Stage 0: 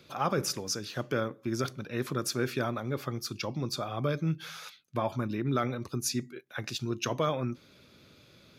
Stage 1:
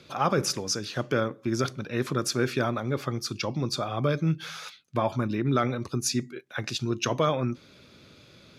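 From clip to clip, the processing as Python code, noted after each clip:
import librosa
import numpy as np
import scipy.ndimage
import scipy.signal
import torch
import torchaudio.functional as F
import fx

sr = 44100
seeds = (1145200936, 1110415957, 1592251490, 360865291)

y = scipy.signal.sosfilt(scipy.signal.butter(2, 10000.0, 'lowpass', fs=sr, output='sos'), x)
y = F.gain(torch.from_numpy(y), 4.5).numpy()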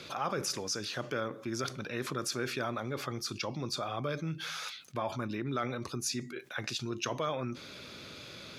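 y = fx.low_shelf(x, sr, hz=390.0, db=-7.5)
y = fx.env_flatten(y, sr, amount_pct=50)
y = F.gain(torch.from_numpy(y), -8.0).numpy()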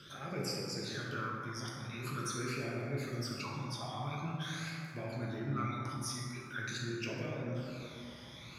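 y = fx.phaser_stages(x, sr, stages=12, low_hz=430.0, high_hz=1200.0, hz=0.46, feedback_pct=40)
y = fx.rev_plate(y, sr, seeds[0], rt60_s=2.8, hf_ratio=0.35, predelay_ms=0, drr_db=-4.5)
y = F.gain(torch.from_numpy(y), -6.0).numpy()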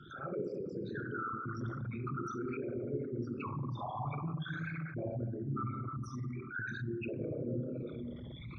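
y = fx.envelope_sharpen(x, sr, power=3.0)
y = fx.rider(y, sr, range_db=4, speed_s=0.5)
y = np.convolve(y, np.full(9, 1.0 / 9))[:len(y)]
y = F.gain(torch.from_numpy(y), 1.5).numpy()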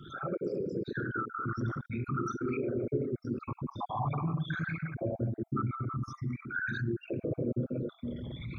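y = fx.spec_dropout(x, sr, seeds[1], share_pct=21)
y = F.gain(torch.from_numpy(y), 6.0).numpy()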